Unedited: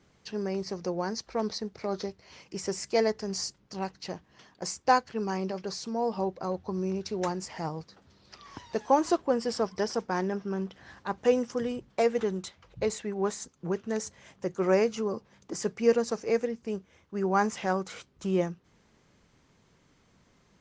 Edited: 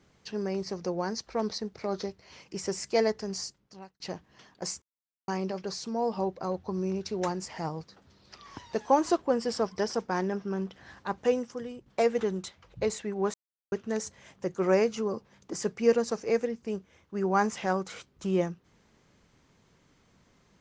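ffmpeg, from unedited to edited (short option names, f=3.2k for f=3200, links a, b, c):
-filter_complex "[0:a]asplit=7[a][b][c][d][e][f][g];[a]atrim=end=4,asetpts=PTS-STARTPTS,afade=t=out:st=3.18:d=0.82[h];[b]atrim=start=4:end=4.82,asetpts=PTS-STARTPTS,afade=t=in:d=0.004:c=hsin,afade=t=out:st=0.816:d=0.004:c=hsin[i];[c]atrim=start=4.82:end=5.28,asetpts=PTS-STARTPTS,volume=0[j];[d]atrim=start=5.28:end=11.86,asetpts=PTS-STARTPTS,afade=t=in:d=0.004:c=hsin,afade=t=out:st=5.89:d=0.69:c=qua:silence=0.375837[k];[e]atrim=start=11.86:end=13.34,asetpts=PTS-STARTPTS,afade=t=in:d=0.004:c=hsin:silence=0.375837,afade=t=out:st=1.476:d=0.004:c=hsin[l];[f]atrim=start=13.34:end=13.72,asetpts=PTS-STARTPTS,volume=0[m];[g]atrim=start=13.72,asetpts=PTS-STARTPTS,afade=t=in:d=0.004:c=hsin[n];[h][i][j][k][l][m][n]concat=n=7:v=0:a=1"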